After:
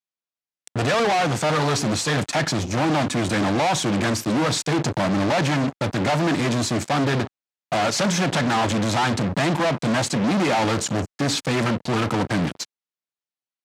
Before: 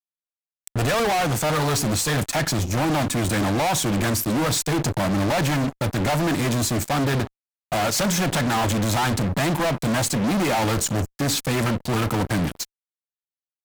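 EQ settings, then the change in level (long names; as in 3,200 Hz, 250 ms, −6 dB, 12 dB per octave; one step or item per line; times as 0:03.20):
band-pass filter 120–6,400 Hz
+1.5 dB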